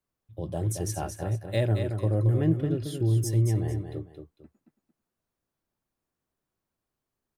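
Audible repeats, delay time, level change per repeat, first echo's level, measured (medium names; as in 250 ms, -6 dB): 2, 225 ms, -10.5 dB, -7.0 dB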